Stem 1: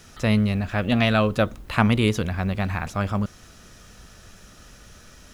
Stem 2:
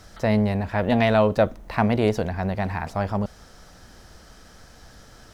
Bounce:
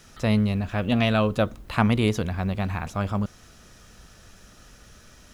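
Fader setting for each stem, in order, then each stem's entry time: −3.0, −15.0 decibels; 0.00, 0.00 seconds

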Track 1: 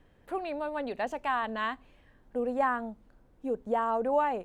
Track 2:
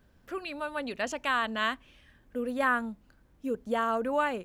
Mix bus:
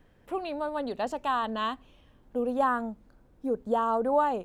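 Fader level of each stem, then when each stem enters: +0.5, −8.0 decibels; 0.00, 0.00 seconds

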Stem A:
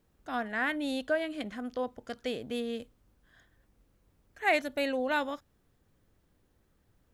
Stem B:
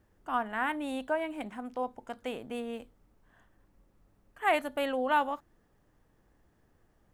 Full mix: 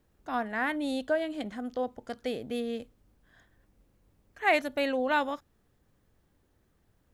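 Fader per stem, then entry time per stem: −0.5, −9.0 decibels; 0.00, 0.00 seconds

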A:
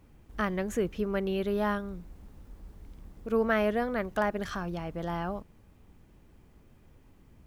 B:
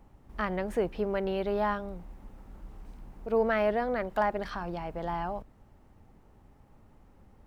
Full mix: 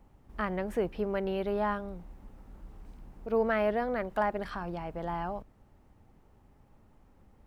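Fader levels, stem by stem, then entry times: −15.0, −3.0 decibels; 0.00, 0.00 seconds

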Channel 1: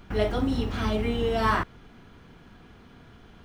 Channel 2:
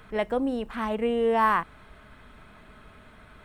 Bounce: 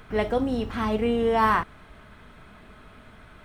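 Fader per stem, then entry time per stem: −5.5, +1.0 decibels; 0.00, 0.00 seconds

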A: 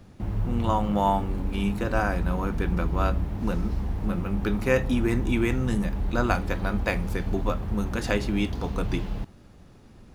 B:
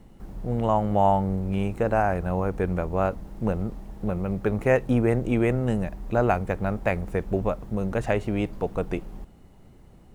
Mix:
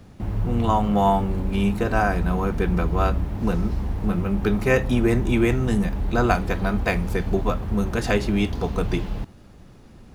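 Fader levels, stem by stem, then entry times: +3.0, −4.5 decibels; 0.00, 0.00 seconds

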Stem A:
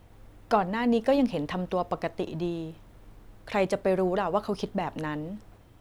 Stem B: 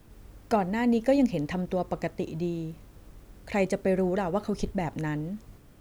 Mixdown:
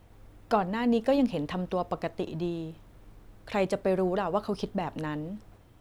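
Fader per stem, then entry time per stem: −2.0, −17.5 decibels; 0.00, 0.00 seconds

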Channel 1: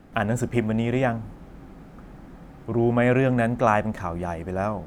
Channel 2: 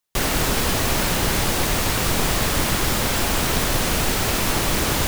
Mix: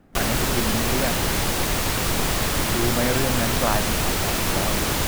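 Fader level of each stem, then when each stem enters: −4.5, −2.0 decibels; 0.00, 0.00 seconds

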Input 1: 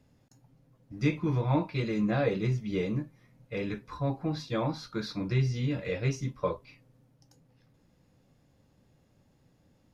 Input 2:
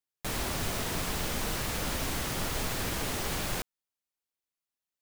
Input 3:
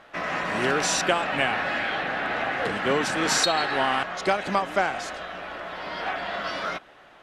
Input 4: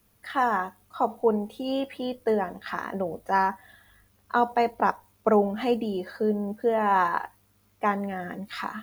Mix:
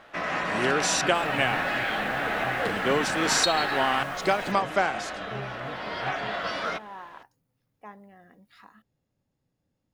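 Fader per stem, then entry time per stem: −13.0, −16.5, −0.5, −20.0 decibels; 0.00, 0.90, 0.00, 0.00 seconds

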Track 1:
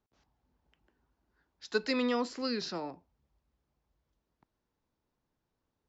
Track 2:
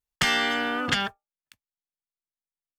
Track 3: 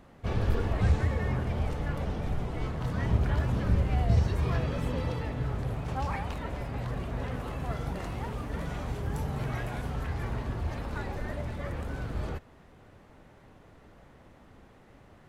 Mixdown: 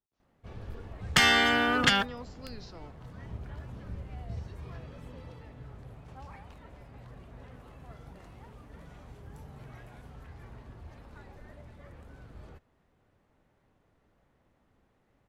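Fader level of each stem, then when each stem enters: −12.5, +1.5, −15.0 decibels; 0.00, 0.95, 0.20 seconds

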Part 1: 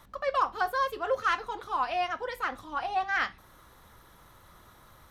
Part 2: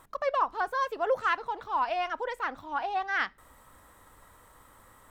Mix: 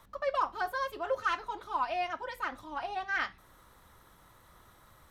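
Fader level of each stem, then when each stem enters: −4.5, −10.5 decibels; 0.00, 0.00 seconds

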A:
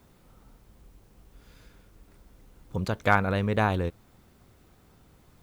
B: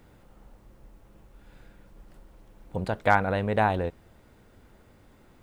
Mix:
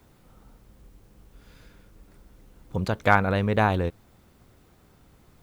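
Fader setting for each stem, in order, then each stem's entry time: +0.5, −10.0 decibels; 0.00, 0.00 seconds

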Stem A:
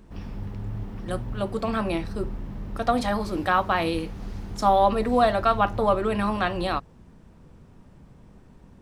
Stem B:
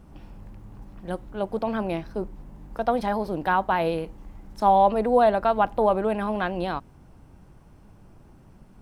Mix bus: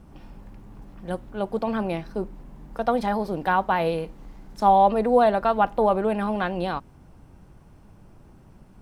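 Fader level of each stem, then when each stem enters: −14.0, +0.5 decibels; 0.00, 0.00 seconds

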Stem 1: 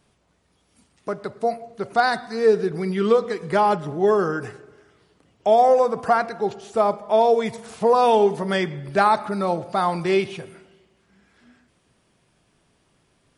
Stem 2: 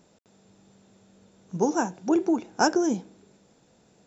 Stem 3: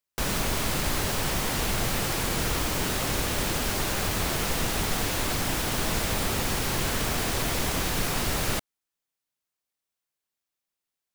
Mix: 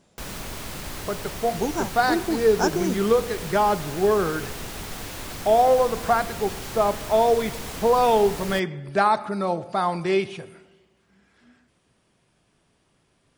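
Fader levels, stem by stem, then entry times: −2.0, −2.5, −7.5 decibels; 0.00, 0.00, 0.00 seconds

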